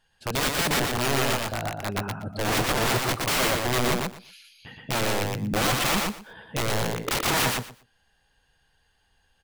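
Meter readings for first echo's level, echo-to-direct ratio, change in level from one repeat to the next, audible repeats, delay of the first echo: -3.0 dB, -3.0 dB, -15.5 dB, 3, 0.119 s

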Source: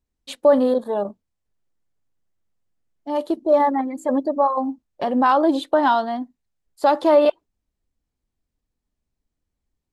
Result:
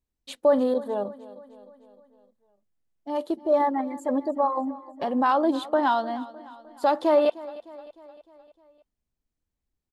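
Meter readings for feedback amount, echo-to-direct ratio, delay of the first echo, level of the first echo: 55%, -17.0 dB, 0.305 s, -18.5 dB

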